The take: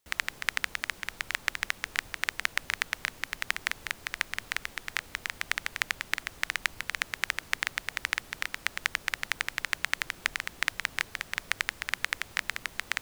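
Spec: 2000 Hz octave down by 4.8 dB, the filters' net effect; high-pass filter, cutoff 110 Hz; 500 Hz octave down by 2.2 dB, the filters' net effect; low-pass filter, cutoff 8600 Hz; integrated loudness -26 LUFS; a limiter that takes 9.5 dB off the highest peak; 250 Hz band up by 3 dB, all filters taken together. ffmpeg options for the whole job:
-af "highpass=110,lowpass=8.6k,equalizer=f=250:t=o:g=5.5,equalizer=f=500:t=o:g=-4,equalizer=f=2k:t=o:g=-5.5,volume=15.5dB,alimiter=limit=0dB:level=0:latency=1"

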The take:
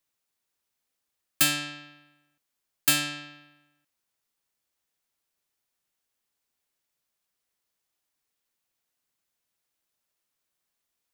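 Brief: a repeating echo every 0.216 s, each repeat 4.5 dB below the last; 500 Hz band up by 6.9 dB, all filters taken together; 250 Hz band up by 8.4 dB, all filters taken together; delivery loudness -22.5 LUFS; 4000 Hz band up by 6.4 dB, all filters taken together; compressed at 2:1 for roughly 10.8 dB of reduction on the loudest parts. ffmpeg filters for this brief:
-af "equalizer=f=250:t=o:g=8,equalizer=f=500:t=o:g=7,equalizer=f=4k:t=o:g=8,acompressor=threshold=-34dB:ratio=2,aecho=1:1:216|432|648|864|1080|1296|1512|1728|1944:0.596|0.357|0.214|0.129|0.0772|0.0463|0.0278|0.0167|0.01,volume=10dB"

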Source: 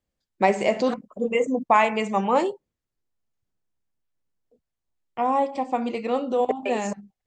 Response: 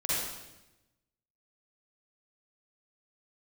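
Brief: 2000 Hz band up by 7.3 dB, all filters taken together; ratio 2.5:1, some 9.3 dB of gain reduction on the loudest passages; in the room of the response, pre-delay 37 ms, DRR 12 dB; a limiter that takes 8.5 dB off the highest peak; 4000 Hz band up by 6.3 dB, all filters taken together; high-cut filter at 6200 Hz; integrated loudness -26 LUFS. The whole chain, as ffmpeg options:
-filter_complex "[0:a]lowpass=6.2k,equalizer=f=2k:t=o:g=7,equalizer=f=4k:t=o:g=6,acompressor=threshold=-25dB:ratio=2.5,alimiter=limit=-18.5dB:level=0:latency=1,asplit=2[a][b];[1:a]atrim=start_sample=2205,adelay=37[c];[b][c]afir=irnorm=-1:irlink=0,volume=-20dB[d];[a][d]amix=inputs=2:normalize=0,volume=4dB"

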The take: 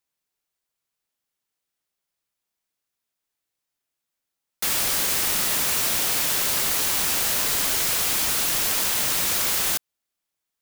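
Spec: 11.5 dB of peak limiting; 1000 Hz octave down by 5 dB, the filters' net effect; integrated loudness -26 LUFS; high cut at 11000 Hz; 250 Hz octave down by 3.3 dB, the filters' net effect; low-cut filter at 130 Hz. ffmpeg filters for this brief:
-af "highpass=130,lowpass=11k,equalizer=f=250:t=o:g=-3.5,equalizer=f=1k:t=o:g=-6.5,volume=5.5dB,alimiter=limit=-19.5dB:level=0:latency=1"

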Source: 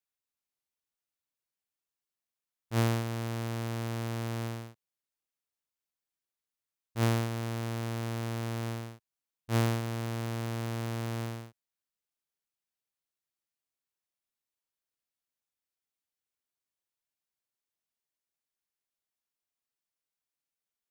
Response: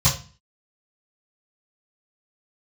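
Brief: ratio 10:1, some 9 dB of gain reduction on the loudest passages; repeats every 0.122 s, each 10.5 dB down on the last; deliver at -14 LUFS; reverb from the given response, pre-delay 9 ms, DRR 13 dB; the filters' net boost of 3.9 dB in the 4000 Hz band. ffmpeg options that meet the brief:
-filter_complex "[0:a]equalizer=f=4k:t=o:g=5,acompressor=threshold=-32dB:ratio=10,aecho=1:1:122|244|366:0.299|0.0896|0.0269,asplit=2[a][b];[1:a]atrim=start_sample=2205,adelay=9[c];[b][c]afir=irnorm=-1:irlink=0,volume=-28.5dB[d];[a][d]amix=inputs=2:normalize=0,volume=20.5dB"

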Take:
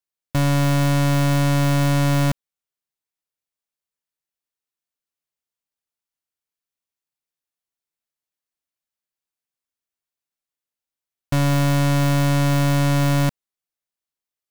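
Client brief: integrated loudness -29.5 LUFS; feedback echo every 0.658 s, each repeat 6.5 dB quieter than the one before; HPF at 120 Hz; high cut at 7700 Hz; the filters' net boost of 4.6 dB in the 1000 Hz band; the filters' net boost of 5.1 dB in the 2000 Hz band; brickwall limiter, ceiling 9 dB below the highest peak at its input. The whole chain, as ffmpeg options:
-af "highpass=120,lowpass=7.7k,equalizer=f=1k:t=o:g=4.5,equalizer=f=2k:t=o:g=5,alimiter=limit=-16.5dB:level=0:latency=1,aecho=1:1:658|1316|1974|2632|3290|3948:0.473|0.222|0.105|0.0491|0.0231|0.0109"

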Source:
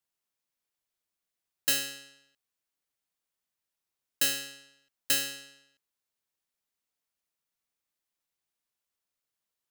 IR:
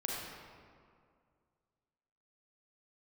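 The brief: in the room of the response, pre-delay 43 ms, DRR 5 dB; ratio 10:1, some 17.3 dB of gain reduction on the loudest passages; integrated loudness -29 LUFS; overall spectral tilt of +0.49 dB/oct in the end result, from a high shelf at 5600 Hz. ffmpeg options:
-filter_complex "[0:a]highshelf=f=5.6k:g=3.5,acompressor=threshold=-37dB:ratio=10,asplit=2[a][b];[1:a]atrim=start_sample=2205,adelay=43[c];[b][c]afir=irnorm=-1:irlink=0,volume=-8.5dB[d];[a][d]amix=inputs=2:normalize=0,volume=13dB"

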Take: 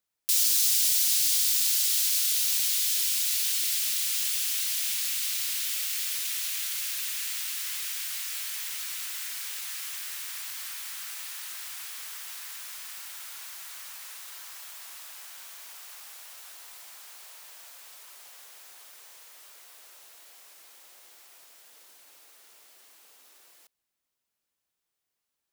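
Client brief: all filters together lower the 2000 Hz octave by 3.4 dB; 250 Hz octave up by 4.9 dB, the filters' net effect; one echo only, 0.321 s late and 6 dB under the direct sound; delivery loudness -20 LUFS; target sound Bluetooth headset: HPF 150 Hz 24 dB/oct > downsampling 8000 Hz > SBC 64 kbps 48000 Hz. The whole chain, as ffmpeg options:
-af "highpass=f=150:w=0.5412,highpass=f=150:w=1.3066,equalizer=f=250:t=o:g=7,equalizer=f=2k:t=o:g=-4.5,aecho=1:1:321:0.501,aresample=8000,aresample=44100,volume=20dB" -ar 48000 -c:a sbc -b:a 64k

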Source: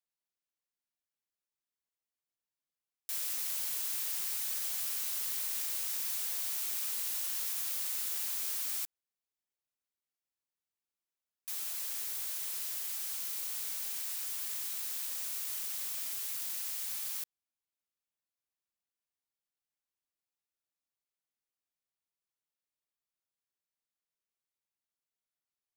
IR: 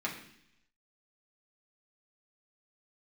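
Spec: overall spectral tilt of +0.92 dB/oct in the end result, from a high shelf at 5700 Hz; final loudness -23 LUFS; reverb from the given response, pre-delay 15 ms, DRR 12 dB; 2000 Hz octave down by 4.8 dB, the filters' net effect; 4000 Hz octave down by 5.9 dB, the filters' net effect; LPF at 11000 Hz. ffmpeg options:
-filter_complex "[0:a]lowpass=11k,equalizer=f=2k:t=o:g=-4,equalizer=f=4k:t=o:g=-3.5,highshelf=f=5.7k:g=-7,asplit=2[a][b];[1:a]atrim=start_sample=2205,adelay=15[c];[b][c]afir=irnorm=-1:irlink=0,volume=-17dB[d];[a][d]amix=inputs=2:normalize=0,volume=22dB"

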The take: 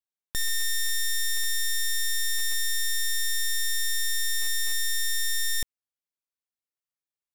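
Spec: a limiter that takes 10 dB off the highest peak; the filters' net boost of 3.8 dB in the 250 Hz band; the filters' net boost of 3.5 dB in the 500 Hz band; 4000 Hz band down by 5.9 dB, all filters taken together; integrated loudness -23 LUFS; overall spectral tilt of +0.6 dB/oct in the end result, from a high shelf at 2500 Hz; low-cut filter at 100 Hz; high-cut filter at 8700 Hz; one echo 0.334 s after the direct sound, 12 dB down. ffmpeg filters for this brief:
-af "highpass=100,lowpass=8.7k,equalizer=f=250:t=o:g=5.5,equalizer=f=500:t=o:g=3,highshelf=f=2.5k:g=-4,equalizer=f=4k:t=o:g=-3.5,alimiter=level_in=8.5dB:limit=-24dB:level=0:latency=1,volume=-8.5dB,aecho=1:1:334:0.251,volume=17.5dB"

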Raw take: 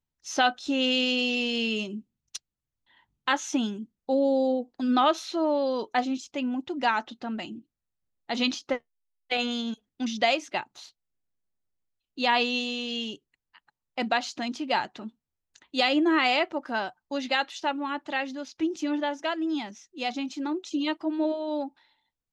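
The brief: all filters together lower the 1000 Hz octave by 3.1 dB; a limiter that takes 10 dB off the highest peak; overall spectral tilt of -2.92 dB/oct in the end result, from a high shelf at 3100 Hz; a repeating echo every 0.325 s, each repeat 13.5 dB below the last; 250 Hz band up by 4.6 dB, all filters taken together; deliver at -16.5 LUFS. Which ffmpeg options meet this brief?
-af "equalizer=f=250:t=o:g=5.5,equalizer=f=1k:t=o:g=-4,highshelf=f=3.1k:g=-7.5,alimiter=limit=-22dB:level=0:latency=1,aecho=1:1:325|650:0.211|0.0444,volume=14dB"

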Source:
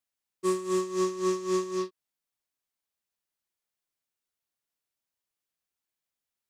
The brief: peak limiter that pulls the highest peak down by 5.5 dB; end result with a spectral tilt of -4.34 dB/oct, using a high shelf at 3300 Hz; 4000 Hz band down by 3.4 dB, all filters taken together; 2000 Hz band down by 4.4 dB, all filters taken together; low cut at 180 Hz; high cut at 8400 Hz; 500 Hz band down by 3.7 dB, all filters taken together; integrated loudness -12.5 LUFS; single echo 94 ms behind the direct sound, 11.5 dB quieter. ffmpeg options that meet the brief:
-af "highpass=180,lowpass=8.4k,equalizer=f=500:t=o:g=-6,equalizer=f=2k:t=o:g=-4.5,highshelf=f=3.3k:g=3.5,equalizer=f=4k:t=o:g=-6,alimiter=level_in=0.5dB:limit=-24dB:level=0:latency=1,volume=-0.5dB,aecho=1:1:94:0.266,volume=22.5dB"

